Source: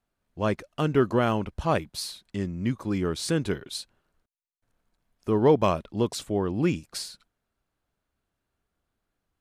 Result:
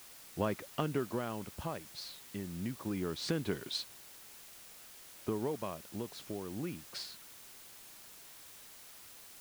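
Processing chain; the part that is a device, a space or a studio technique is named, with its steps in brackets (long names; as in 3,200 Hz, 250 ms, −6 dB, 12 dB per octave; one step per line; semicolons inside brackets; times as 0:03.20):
medium wave at night (band-pass filter 100–4,500 Hz; downward compressor, threshold −30 dBFS, peak gain reduction 15 dB; amplitude tremolo 0.24 Hz, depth 64%; steady tone 10,000 Hz −69 dBFS; white noise bed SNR 13 dB)
level +1.5 dB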